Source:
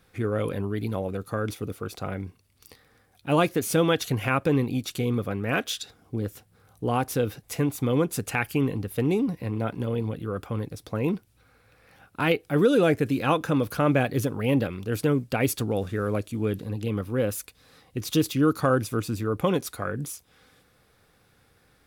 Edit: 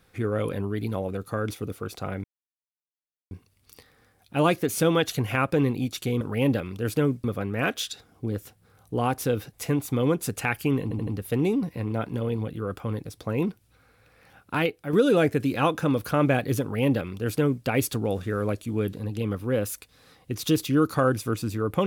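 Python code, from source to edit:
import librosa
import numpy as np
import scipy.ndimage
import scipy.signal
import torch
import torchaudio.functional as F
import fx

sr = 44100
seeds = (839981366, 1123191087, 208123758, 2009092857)

y = fx.edit(x, sr, fx.insert_silence(at_s=2.24, length_s=1.07),
    fx.stutter(start_s=8.73, slice_s=0.08, count=4),
    fx.fade_out_to(start_s=12.22, length_s=0.37, curve='qua', floor_db=-7.0),
    fx.duplicate(start_s=14.28, length_s=1.03, to_s=5.14), tone=tone)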